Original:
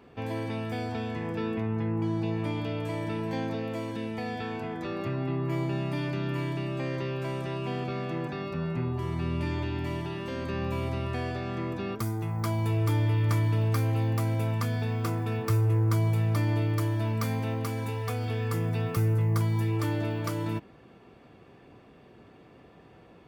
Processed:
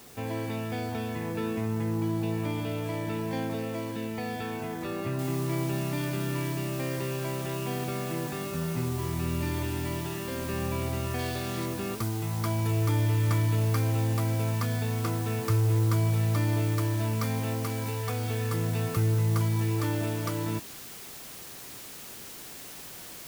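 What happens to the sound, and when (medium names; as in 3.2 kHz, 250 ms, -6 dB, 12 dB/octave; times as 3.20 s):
5.19 s: noise floor step -52 dB -44 dB
11.19–11.66 s: peaking EQ 3.9 kHz +6 dB 1.1 oct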